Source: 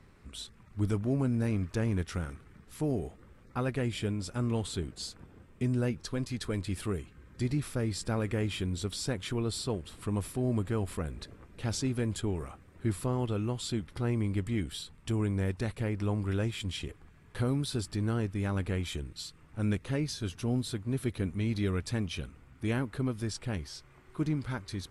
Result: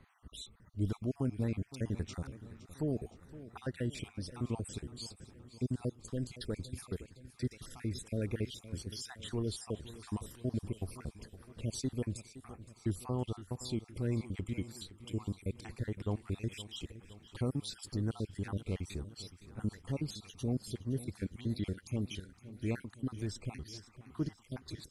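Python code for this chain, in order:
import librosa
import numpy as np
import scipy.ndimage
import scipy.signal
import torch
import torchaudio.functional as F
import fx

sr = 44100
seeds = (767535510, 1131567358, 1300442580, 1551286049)

y = fx.spec_dropout(x, sr, seeds[0], share_pct=52)
y = fx.dynamic_eq(y, sr, hz=1500.0, q=0.97, threshold_db=-55.0, ratio=4.0, max_db=-5)
y = fx.echo_feedback(y, sr, ms=516, feedback_pct=58, wet_db=-16)
y = F.gain(torch.from_numpy(y), -3.0).numpy()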